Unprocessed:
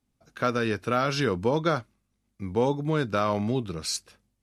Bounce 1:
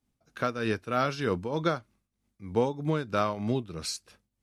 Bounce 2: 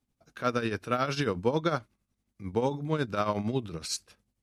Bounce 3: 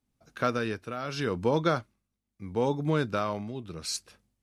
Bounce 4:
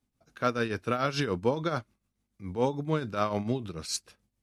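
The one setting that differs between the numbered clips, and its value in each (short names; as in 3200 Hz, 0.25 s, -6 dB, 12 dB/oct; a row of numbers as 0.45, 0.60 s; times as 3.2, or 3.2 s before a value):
tremolo, rate: 3.2, 11, 0.78, 6.9 Hz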